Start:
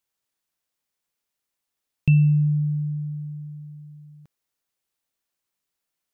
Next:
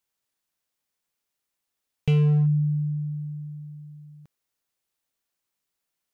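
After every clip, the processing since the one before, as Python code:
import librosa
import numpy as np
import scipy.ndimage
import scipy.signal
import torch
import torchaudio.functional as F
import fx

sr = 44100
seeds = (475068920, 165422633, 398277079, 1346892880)

y = np.clip(x, -10.0 ** (-17.0 / 20.0), 10.0 ** (-17.0 / 20.0))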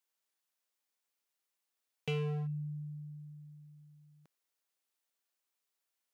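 y = scipy.signal.sosfilt(scipy.signal.bessel(2, 360.0, 'highpass', norm='mag', fs=sr, output='sos'), x)
y = y * librosa.db_to_amplitude(-4.0)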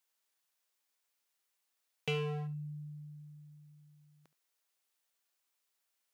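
y = fx.low_shelf(x, sr, hz=370.0, db=-6.5)
y = y + 10.0 ** (-17.5 / 20.0) * np.pad(y, (int(71 * sr / 1000.0), 0))[:len(y)]
y = y * librosa.db_to_amplitude(4.0)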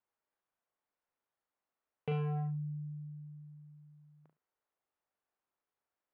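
y = scipy.signal.sosfilt(scipy.signal.butter(2, 1200.0, 'lowpass', fs=sr, output='sos'), x)
y = fx.doubler(y, sr, ms=39.0, db=-5.0)
y = y * librosa.db_to_amplitude(1.0)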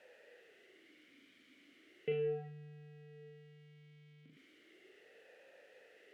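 y = x + 0.5 * 10.0 ** (-51.0 / 20.0) * np.sign(x)
y = fx.vowel_sweep(y, sr, vowels='e-i', hz=0.36)
y = y * librosa.db_to_amplitude(11.5)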